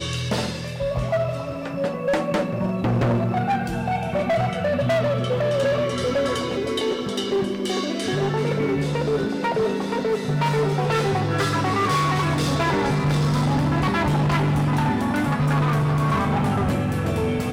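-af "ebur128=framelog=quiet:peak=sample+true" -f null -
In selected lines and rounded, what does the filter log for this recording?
Integrated loudness:
  I:         -22.4 LUFS
  Threshold: -32.4 LUFS
Loudness range:
  LRA:         2.8 LU
  Threshold: -42.3 LUFS
  LRA low:   -23.7 LUFS
  LRA high:  -20.9 LUFS
Sample peak:
  Peak:      -17.2 dBFS
True peak:
  Peak:      -16.6 dBFS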